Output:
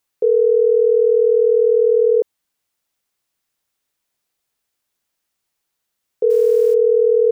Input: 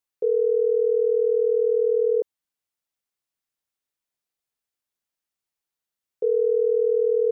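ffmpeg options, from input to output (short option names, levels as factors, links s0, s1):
-filter_complex "[0:a]asplit=2[s0][s1];[s1]alimiter=level_in=1.19:limit=0.0631:level=0:latency=1:release=32,volume=0.841,volume=1.26[s2];[s0][s2]amix=inputs=2:normalize=0,asettb=1/sr,asplit=3[s3][s4][s5];[s3]atrim=end=6.304[s6];[s4]atrim=start=6.3:end=6.74,asetpts=PTS-STARTPTS,afade=t=in:d=0.004:c=qsin,afade=t=out:st=0.436:d=0.004:c=qsin,acrusher=bits=8:dc=4:mix=0:aa=0.000001[s7];[s5]atrim=start=6.736[s8];[s6][s7]acrossfade=d=0.004:c1=hsin:c2=qsin[s9];[s9][s8]acrossfade=d=0.004:c1=qsin:c2=hsin,volume=1.58"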